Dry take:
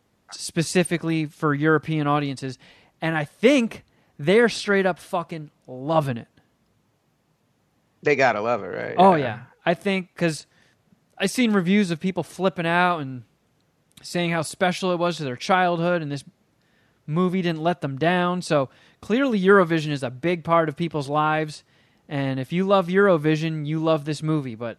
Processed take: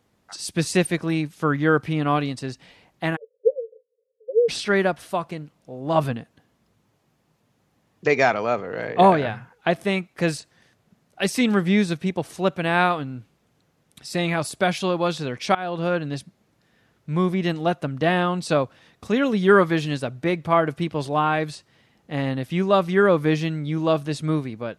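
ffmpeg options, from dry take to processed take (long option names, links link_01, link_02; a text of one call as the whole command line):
ffmpeg -i in.wav -filter_complex "[0:a]asplit=3[link_01][link_02][link_03];[link_01]afade=type=out:start_time=3.15:duration=0.02[link_04];[link_02]asuperpass=centerf=480:order=8:qfactor=4.9,afade=type=in:start_time=3.15:duration=0.02,afade=type=out:start_time=4.48:duration=0.02[link_05];[link_03]afade=type=in:start_time=4.48:duration=0.02[link_06];[link_04][link_05][link_06]amix=inputs=3:normalize=0,asplit=2[link_07][link_08];[link_07]atrim=end=15.55,asetpts=PTS-STARTPTS,afade=type=out:start_time=15.546:duration=0.004:curve=hsin:silence=0.11885[link_09];[link_08]atrim=start=15.55,asetpts=PTS-STARTPTS,afade=type=in:duration=0.53:curve=qsin:silence=0.11885[link_10];[link_09][link_10]concat=n=2:v=0:a=1" out.wav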